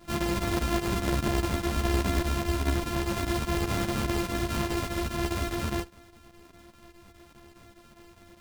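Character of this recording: a buzz of ramps at a fixed pitch in blocks of 128 samples; chopped level 4.9 Hz, depth 65%, duty 85%; a shimmering, thickened sound

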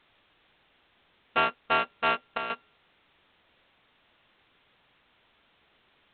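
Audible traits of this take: a buzz of ramps at a fixed pitch in blocks of 32 samples; chopped level 1.2 Hz, depth 65%, duty 85%; a quantiser's noise floor 10-bit, dither triangular; A-law

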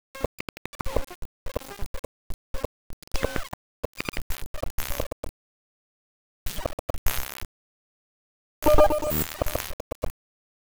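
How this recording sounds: tremolo triangle 1.3 Hz, depth 75%; a quantiser's noise floor 6-bit, dither none

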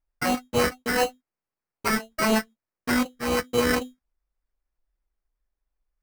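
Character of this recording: phasing stages 12, 4 Hz, lowest notch 790–1700 Hz; aliases and images of a low sample rate 3.5 kHz, jitter 0%

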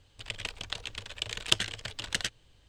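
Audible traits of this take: noise floor -64 dBFS; spectral tilt -1.0 dB/octave

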